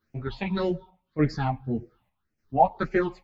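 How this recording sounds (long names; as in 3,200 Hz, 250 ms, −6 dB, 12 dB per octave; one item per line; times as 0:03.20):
phaser sweep stages 6, 1.8 Hz, lowest notch 380–1,000 Hz
chopped level 0.84 Hz, depth 60%, duty 75%
a shimmering, thickened sound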